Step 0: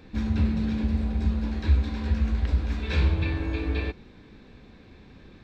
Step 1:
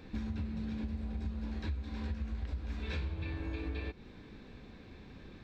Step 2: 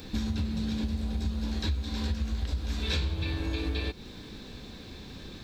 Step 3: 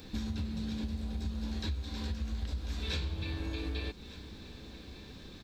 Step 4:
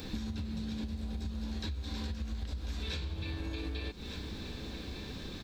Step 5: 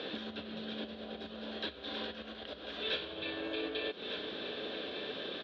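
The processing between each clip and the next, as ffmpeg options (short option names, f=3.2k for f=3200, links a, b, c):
-af "acompressor=threshold=-33dB:ratio=6,volume=-2dB"
-af "aexciter=amount=2.6:drive=7.8:freq=3.2k,volume=7dB"
-af "aecho=1:1:1200:0.15,volume=-5.5dB"
-af "acompressor=threshold=-41dB:ratio=6,volume=6.5dB"
-af "highpass=410,equalizer=f=430:t=q:w=4:g=5,equalizer=f=610:t=q:w=4:g=9,equalizer=f=900:t=q:w=4:g=-6,equalizer=f=1.5k:t=q:w=4:g=3,equalizer=f=2.2k:t=q:w=4:g=-5,equalizer=f=3.2k:t=q:w=4:g=9,lowpass=f=3.4k:w=0.5412,lowpass=f=3.4k:w=1.3066,volume=5.5dB"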